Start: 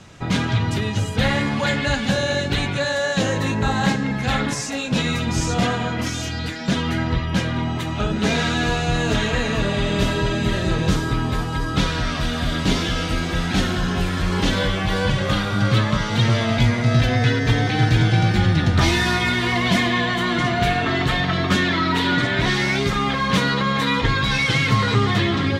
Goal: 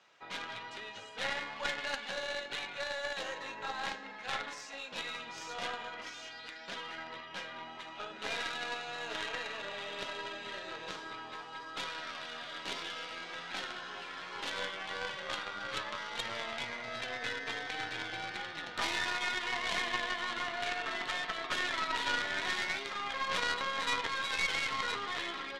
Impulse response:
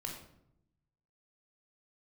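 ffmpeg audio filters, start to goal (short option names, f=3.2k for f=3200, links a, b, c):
-filter_complex "[0:a]highpass=660,lowpass=4.4k,asplit=2[a][b];[1:a]atrim=start_sample=2205,highshelf=f=3.4k:g=5.5[c];[b][c]afir=irnorm=-1:irlink=0,volume=-9.5dB[d];[a][d]amix=inputs=2:normalize=0,aeval=exprs='0.355*(cos(1*acos(clip(val(0)/0.355,-1,1)))-cos(1*PI/2))+0.1*(cos(2*acos(clip(val(0)/0.355,-1,1)))-cos(2*PI/2))+0.0708*(cos(3*acos(clip(val(0)/0.355,-1,1)))-cos(3*PI/2))+0.00447*(cos(8*acos(clip(val(0)/0.355,-1,1)))-cos(8*PI/2))':c=same,volume=-8.5dB"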